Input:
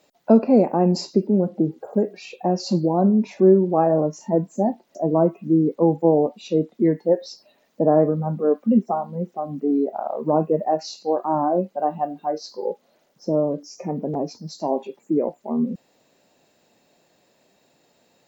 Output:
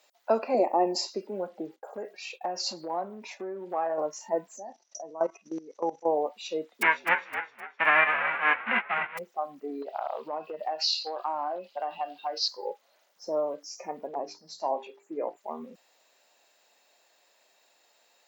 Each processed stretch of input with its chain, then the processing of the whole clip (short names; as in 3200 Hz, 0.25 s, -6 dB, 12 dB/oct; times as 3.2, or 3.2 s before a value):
0.54–1.07 fixed phaser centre 430 Hz, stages 6 + small resonant body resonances 400/1800 Hz, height 17 dB, ringing for 30 ms
1.76–3.98 expander -41 dBFS + compressor, threshold -19 dBFS
4.57–6.06 level quantiser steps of 16 dB + synth low-pass 5900 Hz, resonance Q 16
6.81–9.17 spectral whitening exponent 0.1 + steep low-pass 2500 Hz 48 dB/oct + frequency-shifting echo 0.258 s, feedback 48%, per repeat -64 Hz, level -9 dB
9.82–12.48 band shelf 3600 Hz +13 dB 1.2 oct + compressor, threshold -23 dBFS
14.07–15.37 high shelf 4500 Hz -8.5 dB + notches 50/100/150/200/250/300/350/400/450 Hz
whole clip: dynamic EQ 2000 Hz, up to +4 dB, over -39 dBFS, Q 0.77; HPF 820 Hz 12 dB/oct